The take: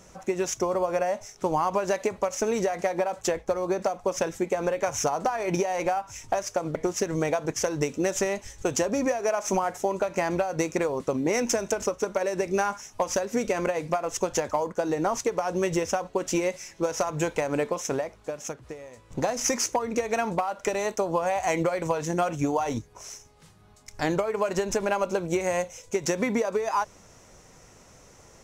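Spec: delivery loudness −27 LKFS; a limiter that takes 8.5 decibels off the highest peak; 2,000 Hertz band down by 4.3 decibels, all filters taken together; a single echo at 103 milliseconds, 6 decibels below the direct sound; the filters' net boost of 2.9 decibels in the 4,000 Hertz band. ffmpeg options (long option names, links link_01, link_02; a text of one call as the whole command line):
ffmpeg -i in.wav -af "equalizer=frequency=2000:width_type=o:gain=-7,equalizer=frequency=4000:width_type=o:gain=6,alimiter=limit=-18.5dB:level=0:latency=1,aecho=1:1:103:0.501,volume=1.5dB" out.wav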